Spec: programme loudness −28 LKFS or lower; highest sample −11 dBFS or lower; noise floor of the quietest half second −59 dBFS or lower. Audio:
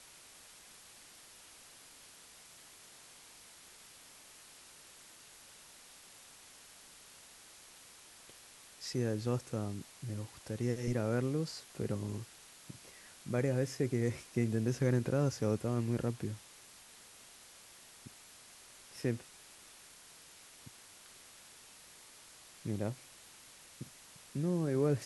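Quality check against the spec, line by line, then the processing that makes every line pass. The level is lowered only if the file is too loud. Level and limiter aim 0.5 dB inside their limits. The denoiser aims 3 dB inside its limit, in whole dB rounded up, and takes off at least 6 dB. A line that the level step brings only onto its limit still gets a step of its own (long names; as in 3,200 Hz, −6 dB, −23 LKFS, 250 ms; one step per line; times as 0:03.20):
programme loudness −36.0 LKFS: in spec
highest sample −19.0 dBFS: in spec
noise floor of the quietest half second −57 dBFS: out of spec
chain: broadband denoise 6 dB, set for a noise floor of −57 dBFS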